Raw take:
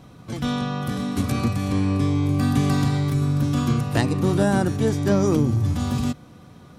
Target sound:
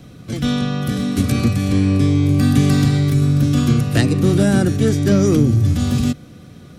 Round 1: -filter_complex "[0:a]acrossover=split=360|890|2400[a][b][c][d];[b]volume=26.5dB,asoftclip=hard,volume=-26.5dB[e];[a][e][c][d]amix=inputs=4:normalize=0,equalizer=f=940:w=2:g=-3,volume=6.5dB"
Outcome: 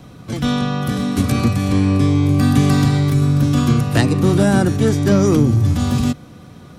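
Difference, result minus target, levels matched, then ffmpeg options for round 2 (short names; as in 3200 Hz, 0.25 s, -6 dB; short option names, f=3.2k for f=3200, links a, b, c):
1000 Hz band +5.0 dB
-filter_complex "[0:a]acrossover=split=360|890|2400[a][b][c][d];[b]volume=26.5dB,asoftclip=hard,volume=-26.5dB[e];[a][e][c][d]amix=inputs=4:normalize=0,equalizer=f=940:w=2:g=-12.5,volume=6.5dB"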